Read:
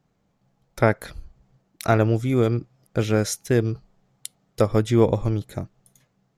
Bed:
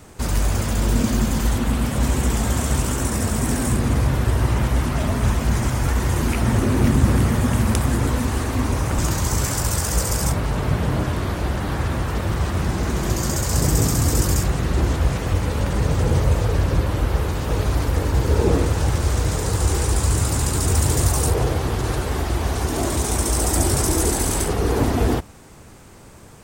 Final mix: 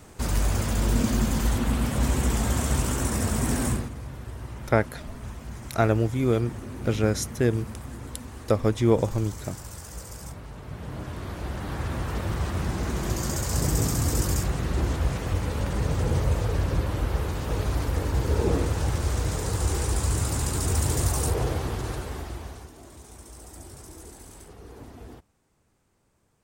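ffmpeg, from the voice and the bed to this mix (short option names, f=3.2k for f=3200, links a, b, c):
-filter_complex "[0:a]adelay=3900,volume=-3dB[a];[1:a]volume=8.5dB,afade=t=out:st=3.67:d=0.23:silence=0.188365,afade=t=in:st=10.66:d=1.47:silence=0.237137,afade=t=out:st=21.55:d=1.18:silence=0.112202[b];[a][b]amix=inputs=2:normalize=0"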